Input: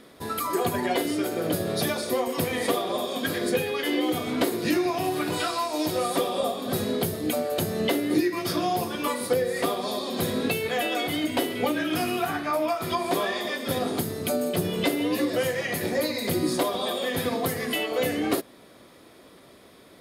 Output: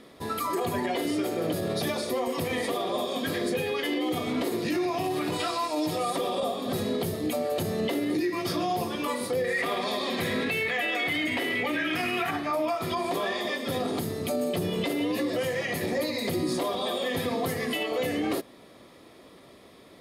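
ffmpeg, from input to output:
-filter_complex "[0:a]asettb=1/sr,asplit=3[a][b][c];[a]atrim=end=5.634[d];[b]atrim=start=5.63:end=6.13,asetpts=PTS-STARTPTS,afade=t=in:d=0.004:c=qsin,afade=t=out:st=0.496:d=0.004:c=qsin,aecho=1:1:6.6:0.57,atrim=end_sample=22050[e];[c]atrim=start=6.126[f];[d][e]acrossfade=d=0.004:c1=hsin:c2=qsin[g];[g][f]acrossfade=d=0.004:c1=qsin:c2=hsin,asettb=1/sr,asplit=3[h][i][j];[h]atrim=end=9.444[k];[i]atrim=start=9.44:end=12.31,asetpts=PTS-STARTPTS,afade=t=in:d=0.004:c=qsin,afade=t=out:st=2.866:d=0.004:c=qsin,equalizer=f=2k:w=1.4:g=13[l];[j]atrim=start=12.306[m];[k][l]acrossfade=d=0.004:c1=hsin:c2=qsin[n];[n][m]acrossfade=d=0.004:c1=qsin:c2=hsin,highshelf=f=9k:g=-7,bandreject=f=1.5k:w=9.6,alimiter=limit=-20dB:level=0:latency=1:release=28"

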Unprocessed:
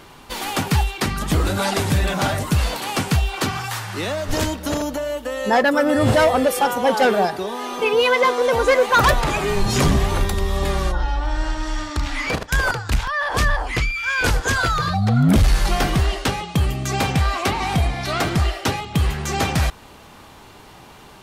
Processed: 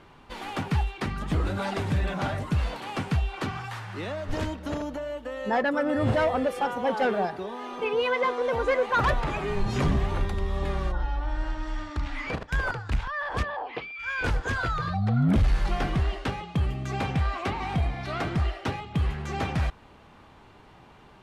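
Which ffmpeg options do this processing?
-filter_complex "[0:a]asplit=3[a][b][c];[a]afade=t=out:st=13.42:d=0.02[d];[b]highpass=330,equalizer=f=470:t=q:w=4:g=6,equalizer=f=800:t=q:w=4:g=6,equalizer=f=1.4k:t=q:w=4:g=-7,equalizer=f=2k:t=q:w=4:g=-7,lowpass=f=4k:w=0.5412,lowpass=f=4k:w=1.3066,afade=t=in:st=13.42:d=0.02,afade=t=out:st=13.98:d=0.02[e];[c]afade=t=in:st=13.98:d=0.02[f];[d][e][f]amix=inputs=3:normalize=0,lowpass=11k,bass=f=250:g=2,treble=f=4k:g=-12,volume=-8.5dB"

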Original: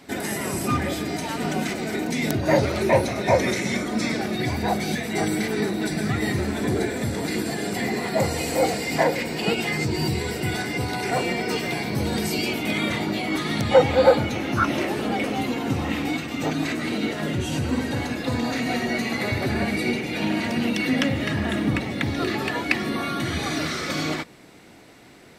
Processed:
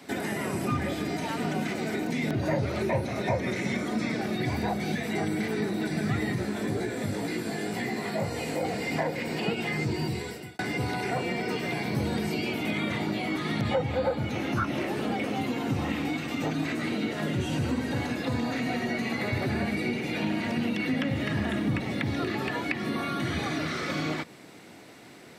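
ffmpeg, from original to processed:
-filter_complex "[0:a]asettb=1/sr,asplit=3[a][b][c];[a]atrim=end=6.354[d];[b]atrim=start=6.35:end=8.65,asetpts=PTS-STARTPTS,afade=t=in:d=0.004:c=qsin,afade=t=out:st=2.296:d=0.004:c=qsin,flanger=delay=16.5:depth=3.4:speed=2[e];[c]atrim=start=8.646[f];[d][e]acrossfade=d=0.004:c1=hsin:c2=qsin[g];[g][f]acrossfade=d=0.004:c1=qsin:c2=hsin,asplit=2[h][i];[h]atrim=end=10.59,asetpts=PTS-STARTPTS,afade=t=out:st=9.8:d=0.79[j];[i]atrim=start=10.59,asetpts=PTS-STARTPTS,afade=t=in:d=0.004:c=hsin[k];[j][k]concat=n=2:v=0:a=1,acrossover=split=3500[l][m];[m]acompressor=threshold=-41dB:ratio=4:attack=1:release=60[n];[l][n]amix=inputs=2:normalize=0,highpass=100,acrossover=split=160[o][p];[p]acompressor=threshold=-29dB:ratio=3[q];[o][q]amix=inputs=2:normalize=0"

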